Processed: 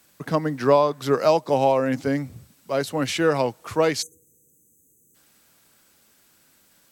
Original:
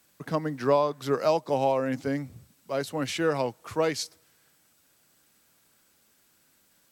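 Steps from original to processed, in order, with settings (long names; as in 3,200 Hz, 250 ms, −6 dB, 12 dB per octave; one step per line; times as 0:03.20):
time-frequency box erased 0:04.02–0:05.15, 520–6,000 Hz
level +5.5 dB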